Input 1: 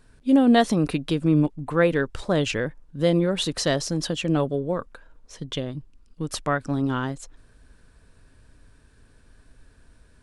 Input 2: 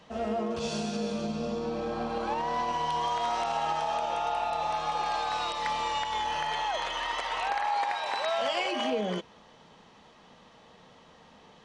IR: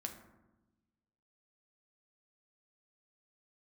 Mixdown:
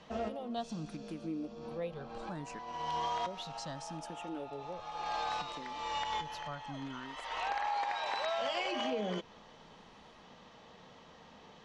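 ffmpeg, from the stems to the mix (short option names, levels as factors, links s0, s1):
-filter_complex "[0:a]asplit=2[s0][s1];[s1]afreqshift=0.68[s2];[s0][s2]amix=inputs=2:normalize=1,volume=0.133,asplit=3[s3][s4][s5];[s3]atrim=end=2.59,asetpts=PTS-STARTPTS,afade=t=out:st=2.586:d=0.004:c=hsin[s6];[s4]atrim=start=2.59:end=3.26,asetpts=PTS-STARTPTS,volume=0[s7];[s5]atrim=start=3.26,asetpts=PTS-STARTPTS,afade=t=in:d=0.004:c=hsin[s8];[s6][s7][s8]concat=n=3:v=0:a=1,asplit=2[s9][s10];[1:a]lowpass=f=7500:w=0.5412,lowpass=f=7500:w=1.3066,acompressor=threshold=0.02:ratio=2,volume=0.891[s11];[s10]apad=whole_len=513756[s12];[s11][s12]sidechaincompress=threshold=0.00126:ratio=3:attack=16:release=327[s13];[s9][s13]amix=inputs=2:normalize=0"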